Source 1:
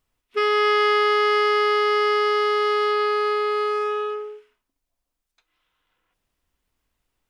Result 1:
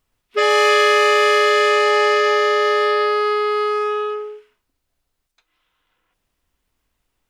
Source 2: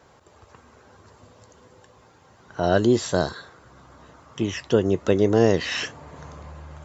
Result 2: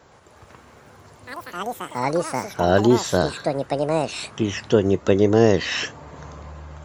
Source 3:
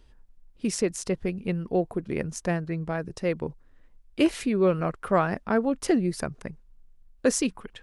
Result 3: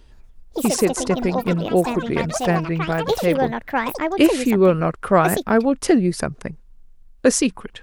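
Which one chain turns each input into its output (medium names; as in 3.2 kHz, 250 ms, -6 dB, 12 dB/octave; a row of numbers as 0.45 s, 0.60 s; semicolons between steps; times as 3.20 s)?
ever faster or slower copies 119 ms, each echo +6 st, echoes 3, each echo -6 dB; peak normalisation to -2 dBFS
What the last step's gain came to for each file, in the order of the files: +3.5 dB, +2.5 dB, +7.0 dB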